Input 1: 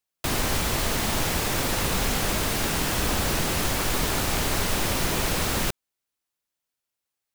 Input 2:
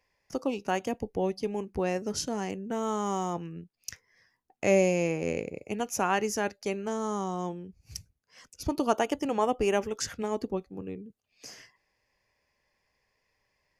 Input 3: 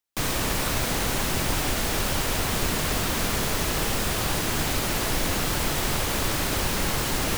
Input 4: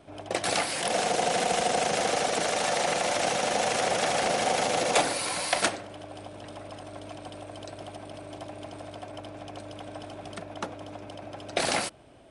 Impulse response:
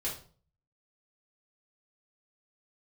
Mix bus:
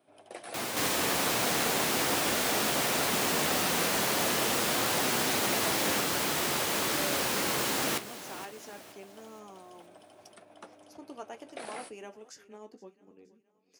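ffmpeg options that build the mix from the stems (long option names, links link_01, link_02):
-filter_complex "[0:a]adelay=300,volume=-4dB[link_01];[1:a]adelay=2300,volume=-13dB,asplit=2[link_02][link_03];[link_03]volume=-19.5dB[link_04];[2:a]adelay=600,volume=1.5dB,asplit=2[link_05][link_06];[link_06]volume=-14.5dB[link_07];[3:a]acrossover=split=2700[link_08][link_09];[link_09]acompressor=threshold=-37dB:ratio=4:attack=1:release=60[link_10];[link_08][link_10]amix=inputs=2:normalize=0,aexciter=amount=2.3:drive=7.8:freq=9100,volume=-10dB[link_11];[link_04][link_07]amix=inputs=2:normalize=0,aecho=0:1:472|944|1416|1888|2360|2832:1|0.42|0.176|0.0741|0.0311|0.0131[link_12];[link_01][link_02][link_05][link_11][link_12]amix=inputs=5:normalize=0,flanger=delay=8.1:depth=6.3:regen=-52:speed=0.2:shape=sinusoidal,highpass=220"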